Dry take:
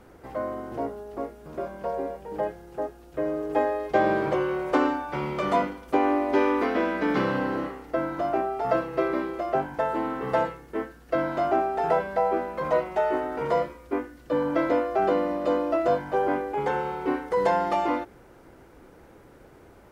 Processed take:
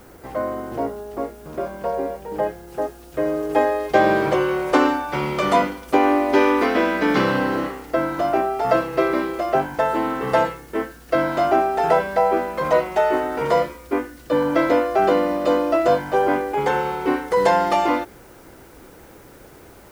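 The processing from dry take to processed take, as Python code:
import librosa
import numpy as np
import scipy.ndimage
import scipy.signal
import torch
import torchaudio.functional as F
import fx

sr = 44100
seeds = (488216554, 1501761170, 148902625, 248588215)

y = fx.high_shelf(x, sr, hz=2800.0, db=fx.steps((0.0, 3.0), (2.68, 8.0)))
y = fx.dmg_noise_colour(y, sr, seeds[0], colour='blue', level_db=-62.0)
y = y * librosa.db_to_amplitude(5.5)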